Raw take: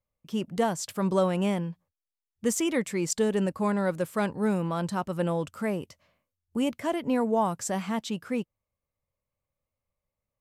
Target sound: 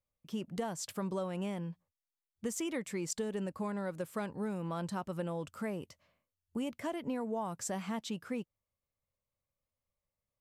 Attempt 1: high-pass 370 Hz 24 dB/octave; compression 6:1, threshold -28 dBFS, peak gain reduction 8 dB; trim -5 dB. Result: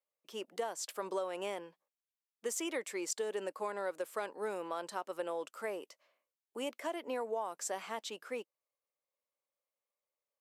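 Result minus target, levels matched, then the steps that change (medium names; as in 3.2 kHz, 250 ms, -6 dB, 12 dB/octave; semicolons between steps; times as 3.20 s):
500 Hz band +2.5 dB
remove: high-pass 370 Hz 24 dB/octave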